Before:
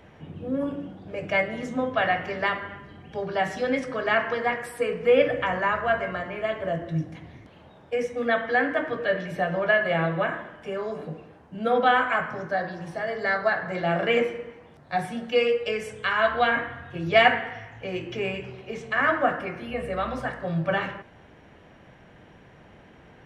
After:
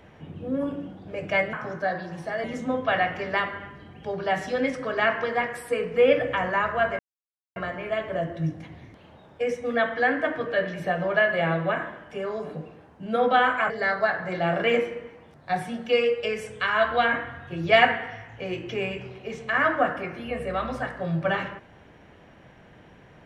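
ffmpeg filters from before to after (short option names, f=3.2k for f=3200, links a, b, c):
-filter_complex "[0:a]asplit=5[a][b][c][d][e];[a]atrim=end=1.532[f];[b]atrim=start=12.218:end=13.132[g];[c]atrim=start=1.528:end=6.08,asetpts=PTS-STARTPTS,afade=t=out:st=4.548:d=0.004:c=hsin,apad=pad_dur=0.57[h];[d]atrim=start=6.08:end=12.222,asetpts=PTS-STARTPTS,afade=t=in:d=0.004:c=hsin[i];[e]atrim=start=13.128[j];[f][g]acrossfade=d=0.004:c1=hsin:c2=hsin[k];[h][i]concat=n=2:v=0:a=1[l];[k][l]acrossfade=d=0.004:c1=hsin:c2=hsin[m];[m][j]acrossfade=d=0.004:c1=hsin:c2=hsin"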